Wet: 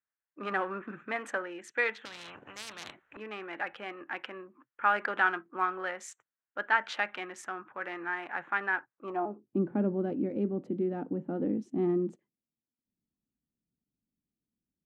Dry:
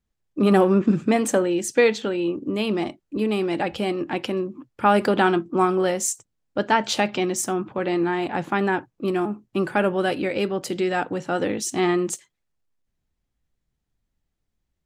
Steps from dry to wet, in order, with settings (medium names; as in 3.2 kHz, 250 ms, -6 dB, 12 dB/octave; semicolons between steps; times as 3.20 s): local Wiener filter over 9 samples; band-pass sweep 1.6 kHz -> 240 Hz, 8.94–9.60 s; 2.05–3.17 s: spectrum-flattening compressor 10:1